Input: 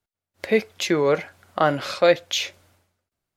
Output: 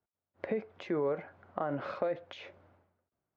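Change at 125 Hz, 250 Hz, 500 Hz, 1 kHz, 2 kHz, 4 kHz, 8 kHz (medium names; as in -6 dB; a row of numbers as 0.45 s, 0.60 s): -12.5 dB, -12.0 dB, -13.5 dB, -14.0 dB, -18.5 dB, -25.5 dB, under -35 dB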